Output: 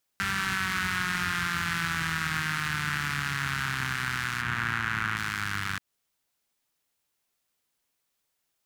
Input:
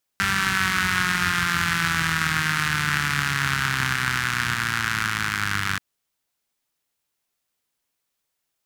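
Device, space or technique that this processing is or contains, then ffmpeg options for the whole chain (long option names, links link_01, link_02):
soft clipper into limiter: -filter_complex "[0:a]asettb=1/sr,asplit=3[link_01][link_02][link_03];[link_01]atrim=end=4.414[link_04];[link_02]atrim=start=4.41:end=5.17,asetpts=PTS-STARTPTS,afade=type=in:duration=0.004:curve=qsin,afade=type=out:start_time=0.756:duration=0.004:curve=qsin,acrossover=split=3100[link_05][link_06];[link_06]acompressor=threshold=-38dB:ratio=4:attack=1:release=60[link_07];[link_05][link_07]amix=inputs=2:normalize=0[link_08];[link_03]atrim=start=5.166[link_09];[link_04][link_08]acrossfade=duration=0.004:curve1=hsin:curve2=qsin[link_10];[link_10][link_09]acrossfade=duration=0.004:curve1=qsin:curve2=hsin,asoftclip=type=tanh:threshold=-8dB,alimiter=limit=-16dB:level=0:latency=1:release=170"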